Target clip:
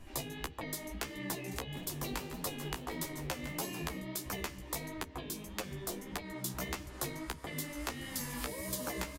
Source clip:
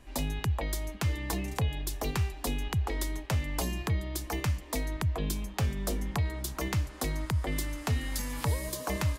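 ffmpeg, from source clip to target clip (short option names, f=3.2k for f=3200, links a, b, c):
-filter_complex "[0:a]acompressor=threshold=-34dB:ratio=2.5,lowpass=f=2.4k:p=1,aemphasis=mode=production:type=75fm,asplit=2[a][b];[b]adelay=15,volume=-11dB[c];[a][c]amix=inputs=2:normalize=0,asplit=3[d][e][f];[d]afade=t=out:st=1.74:d=0.02[g];[e]asplit=7[h][i][j][k][l][m][n];[i]adelay=156,afreqshift=100,volume=-12.5dB[o];[j]adelay=312,afreqshift=200,volume=-17.4dB[p];[k]adelay=468,afreqshift=300,volume=-22.3dB[q];[l]adelay=624,afreqshift=400,volume=-27.1dB[r];[m]adelay=780,afreqshift=500,volume=-32dB[s];[n]adelay=936,afreqshift=600,volume=-36.9dB[t];[h][o][p][q][r][s][t]amix=inputs=7:normalize=0,afade=t=in:st=1.74:d=0.02,afade=t=out:st=4:d=0.02[u];[f]afade=t=in:st=4:d=0.02[v];[g][u][v]amix=inputs=3:normalize=0,afftfilt=real='re*lt(hypot(re,im),0.0708)':imag='im*lt(hypot(re,im),0.0708)':win_size=1024:overlap=0.75,flanger=delay=9.3:depth=8.1:regen=4:speed=1.6:shape=triangular,lowshelf=f=330:g=6,bandreject=f=66.33:t=h:w=4,bandreject=f=132.66:t=h:w=4,bandreject=f=198.99:t=h:w=4,bandreject=f=265.32:t=h:w=4,bandreject=f=331.65:t=h:w=4,bandreject=f=397.98:t=h:w=4,bandreject=f=464.31:t=h:w=4,volume=2.5dB"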